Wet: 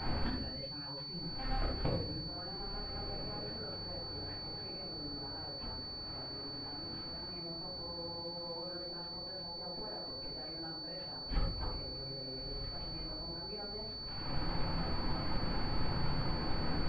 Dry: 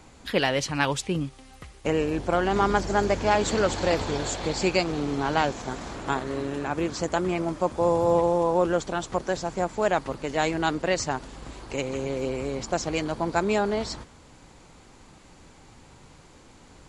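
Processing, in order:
reverb reduction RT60 0.71 s
in parallel at +0.5 dB: downward compressor, threshold −32 dBFS, peak gain reduction 14 dB
on the sum: brickwall limiter −17 dBFS, peak gain reduction 10.5 dB
0:06.02–0:07.31: comparator with hysteresis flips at −45.5 dBFS
surface crackle 300 per second −38 dBFS
gate with flip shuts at −26 dBFS, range −29 dB
feedback delay with all-pass diffusion 1,408 ms, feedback 44%, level −7.5 dB
convolution reverb RT60 0.65 s, pre-delay 8 ms, DRR −6.5 dB
switching amplifier with a slow clock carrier 4,500 Hz
level −2 dB

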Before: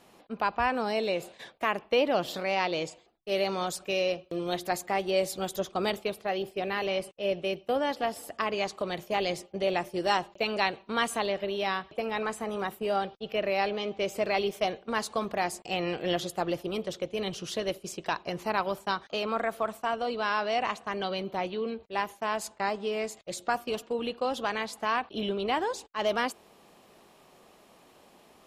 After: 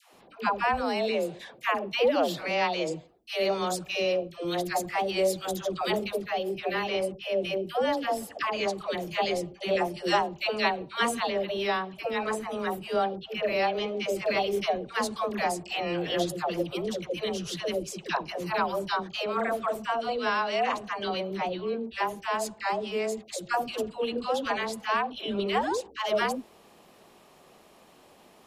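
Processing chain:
all-pass dispersion lows, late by 140 ms, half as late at 590 Hz
level +1.5 dB

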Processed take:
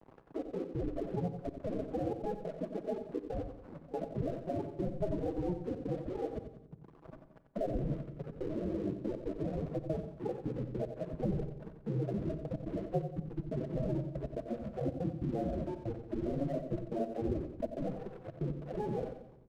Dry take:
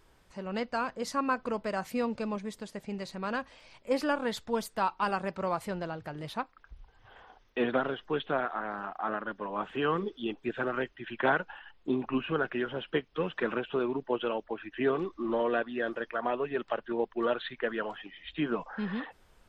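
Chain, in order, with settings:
gate on every frequency bin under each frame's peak −10 dB weak
elliptic band-pass filter 140–2,100 Hz, stop band 40 dB
low-shelf EQ 370 Hz +2 dB
in parallel at +1 dB: compressor whose output falls as the input rises −46 dBFS, ratio −0.5
on the sum: decimation without filtering 35×
spectral peaks only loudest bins 8
dead-zone distortion −59.5 dBFS
gate pattern "xxxx.x.x" 141 BPM −24 dB
on a send: repeating echo 90 ms, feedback 38%, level −10 dB
on the sum: rectangular room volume 2,000 cubic metres, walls furnished, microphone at 0.68 metres
multiband upward and downward compressor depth 40%
level +7 dB

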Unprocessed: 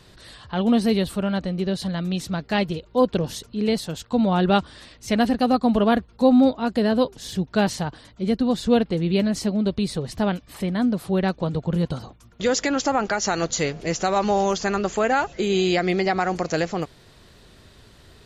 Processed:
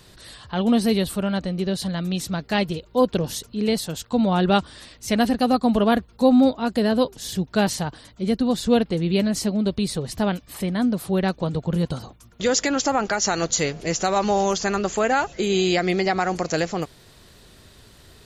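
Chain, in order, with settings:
high-shelf EQ 7,500 Hz +10 dB

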